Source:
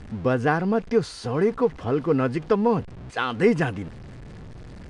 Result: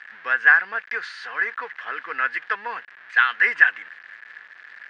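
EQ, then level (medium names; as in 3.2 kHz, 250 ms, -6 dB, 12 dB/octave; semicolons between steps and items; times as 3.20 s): resonant high-pass 1.7 kHz, resonance Q 6.5; low-pass 3.2 kHz 12 dB/octave; +3.0 dB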